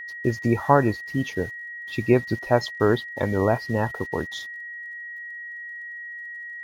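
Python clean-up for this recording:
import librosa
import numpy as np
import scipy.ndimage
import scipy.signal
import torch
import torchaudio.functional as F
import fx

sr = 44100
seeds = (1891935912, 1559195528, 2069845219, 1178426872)

y = fx.fix_declick_ar(x, sr, threshold=6.5)
y = fx.notch(y, sr, hz=1900.0, q=30.0)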